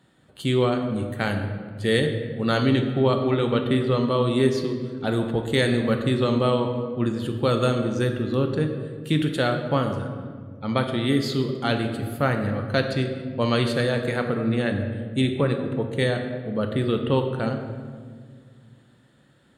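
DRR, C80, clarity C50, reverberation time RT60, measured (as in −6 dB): 4.5 dB, 8.0 dB, 6.5 dB, 1.9 s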